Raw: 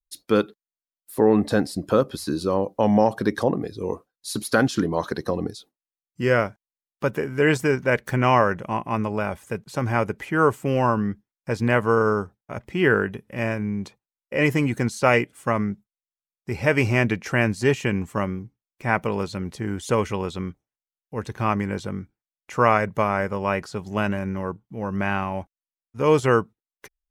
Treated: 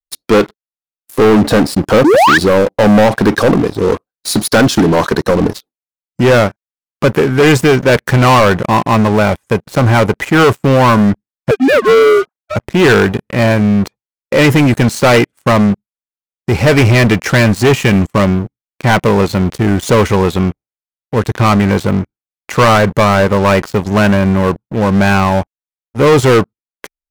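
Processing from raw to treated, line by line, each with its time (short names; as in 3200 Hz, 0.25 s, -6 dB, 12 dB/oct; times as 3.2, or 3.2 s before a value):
2.04–2.38 painted sound rise 270–1900 Hz -19 dBFS
11.51–12.56 sine-wave speech
whole clip: high shelf 3200 Hz -4.5 dB; sample leveller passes 5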